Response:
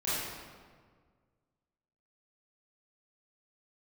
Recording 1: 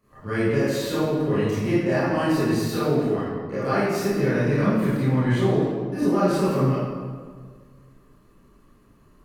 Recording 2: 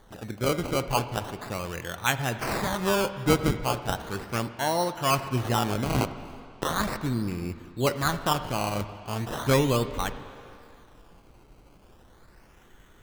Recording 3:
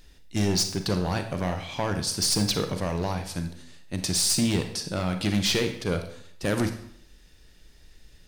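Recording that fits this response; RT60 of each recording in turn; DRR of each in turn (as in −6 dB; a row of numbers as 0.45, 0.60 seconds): 1; 1.7, 2.4, 0.65 seconds; −12.5, 10.0, 6.5 decibels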